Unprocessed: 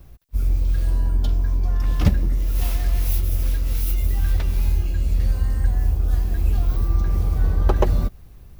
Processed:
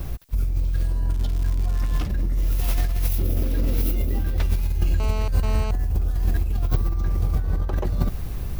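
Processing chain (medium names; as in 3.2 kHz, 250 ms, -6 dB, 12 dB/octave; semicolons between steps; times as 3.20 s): 3.18–4.38 s: graphic EQ 250/500/8000 Hz +11/+8/-5 dB; compressor with a negative ratio -27 dBFS, ratio -1; 1.08–2.06 s: crackle 250 per s -36 dBFS; 5.00–5.71 s: mobile phone buzz -39 dBFS; trim +6.5 dB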